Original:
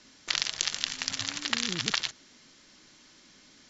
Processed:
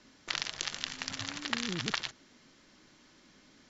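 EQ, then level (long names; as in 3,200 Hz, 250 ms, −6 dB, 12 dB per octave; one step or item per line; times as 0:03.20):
high-shelf EQ 2,600 Hz −9.5 dB
0.0 dB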